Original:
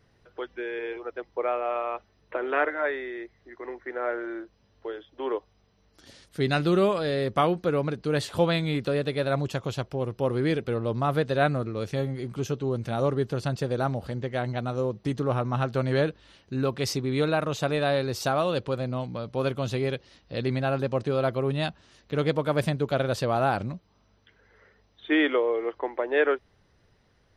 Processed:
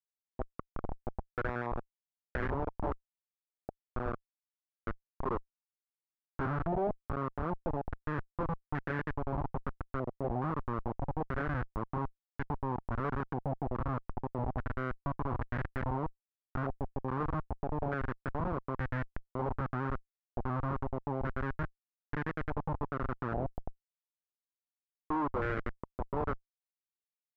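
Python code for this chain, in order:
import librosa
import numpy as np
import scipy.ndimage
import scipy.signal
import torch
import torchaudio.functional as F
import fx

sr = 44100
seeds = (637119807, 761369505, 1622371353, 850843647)

y = scipy.ndimage.median_filter(x, 41, mode='constant')
y = fx.rider(y, sr, range_db=4, speed_s=2.0)
y = fx.schmitt(y, sr, flips_db=-25.5)
y = fx.filter_held_lowpass(y, sr, hz=2.4, low_hz=740.0, high_hz=1700.0)
y = F.gain(torch.from_numpy(y), -4.0).numpy()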